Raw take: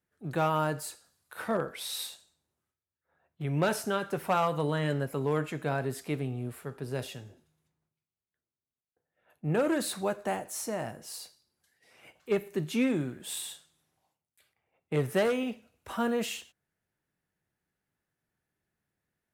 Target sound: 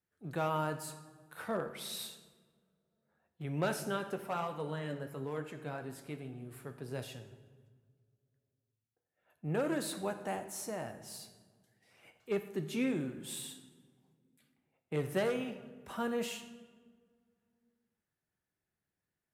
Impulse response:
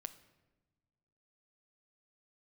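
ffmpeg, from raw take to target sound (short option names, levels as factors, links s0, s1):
-filter_complex "[0:a]asplit=3[s0][s1][s2];[s0]afade=t=out:st=4.14:d=0.02[s3];[s1]flanger=delay=2.8:depth=9.2:regen=62:speed=1.1:shape=triangular,afade=t=in:st=4.14:d=0.02,afade=t=out:st=6.51:d=0.02[s4];[s2]afade=t=in:st=6.51:d=0.02[s5];[s3][s4][s5]amix=inputs=3:normalize=0[s6];[1:a]atrim=start_sample=2205,asetrate=27783,aresample=44100[s7];[s6][s7]afir=irnorm=-1:irlink=0,volume=0.631"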